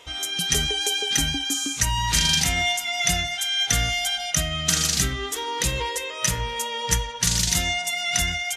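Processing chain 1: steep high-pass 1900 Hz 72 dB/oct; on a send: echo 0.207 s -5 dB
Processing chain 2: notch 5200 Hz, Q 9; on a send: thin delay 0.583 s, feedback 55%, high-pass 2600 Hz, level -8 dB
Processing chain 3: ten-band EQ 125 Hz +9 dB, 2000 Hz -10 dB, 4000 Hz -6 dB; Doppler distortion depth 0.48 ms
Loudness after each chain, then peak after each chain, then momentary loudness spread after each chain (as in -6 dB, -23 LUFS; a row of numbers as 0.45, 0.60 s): -22.0, -22.0, -25.0 LUFS; -6.0, -6.5, -6.5 dBFS; 7, 5, 7 LU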